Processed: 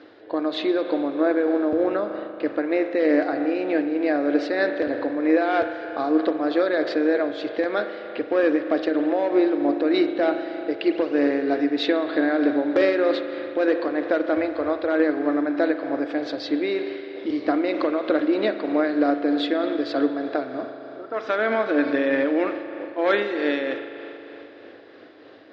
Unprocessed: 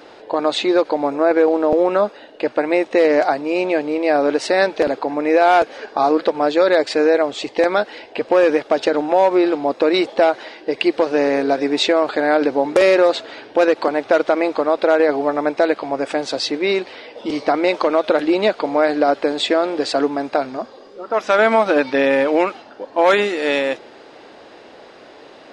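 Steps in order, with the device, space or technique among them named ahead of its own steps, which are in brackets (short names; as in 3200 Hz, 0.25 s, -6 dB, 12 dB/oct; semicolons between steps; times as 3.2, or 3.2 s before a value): 14.37–14.85 resonant low shelf 120 Hz +13.5 dB, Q 3; combo amplifier with spring reverb and tremolo (spring tank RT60 3.3 s, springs 38 ms, chirp 35 ms, DRR 6.5 dB; tremolo 3.2 Hz, depth 31%; speaker cabinet 76–4500 Hz, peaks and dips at 100 Hz +9 dB, 170 Hz -7 dB, 300 Hz +9 dB, 890 Hz -8 dB, 1700 Hz +4 dB, 2600 Hz -4 dB); gain -6.5 dB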